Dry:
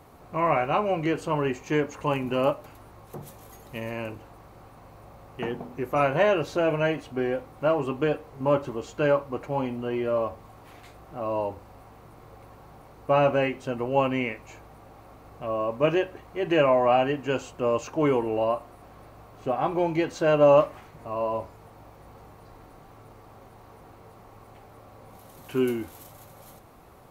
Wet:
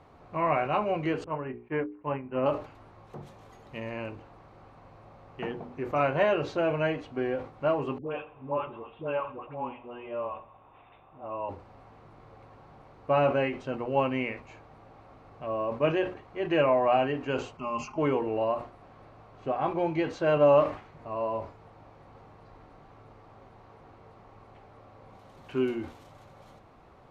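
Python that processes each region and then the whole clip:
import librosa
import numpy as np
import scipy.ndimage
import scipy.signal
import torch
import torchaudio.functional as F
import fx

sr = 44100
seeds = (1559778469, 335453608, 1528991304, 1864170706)

y = fx.chain(x, sr, fx.lowpass(hz=2300.0, slope=24),
    fx.doubler(ms=23.0, db=-11),
    fx.upward_expand(threshold_db=-39.0, expansion=2.5), at=(1.24, 2.46))
y = fx.chain(y, sr, fx.cheby_ripple(hz=3700.0, ripple_db=9),
    fx.dispersion(late='highs', ms=93.0, hz=700.0),
    fx.echo_feedback(ms=85, feedback_pct=49, wet_db=-18.5), at=(7.98, 11.49))
y = fx.chain(y, sr, fx.fixed_phaser(hz=2500.0, stages=8),
    fx.comb(ms=4.8, depth=0.58), at=(17.57, 17.98))
y = scipy.signal.sosfilt(scipy.signal.butter(2, 4100.0, 'lowpass', fs=sr, output='sos'), y)
y = fx.hum_notches(y, sr, base_hz=60, count=8)
y = fx.sustainer(y, sr, db_per_s=140.0)
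y = y * 10.0 ** (-3.0 / 20.0)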